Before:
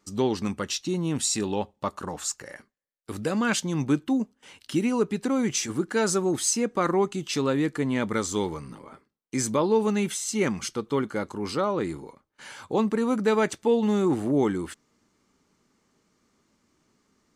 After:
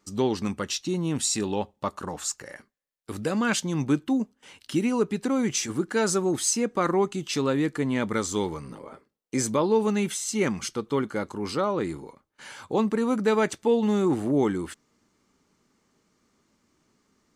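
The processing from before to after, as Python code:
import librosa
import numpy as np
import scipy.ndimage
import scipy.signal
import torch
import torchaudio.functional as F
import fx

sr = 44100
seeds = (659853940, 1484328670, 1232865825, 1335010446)

y = fx.peak_eq(x, sr, hz=520.0, db=7.0, octaves=0.91, at=(8.64, 9.47))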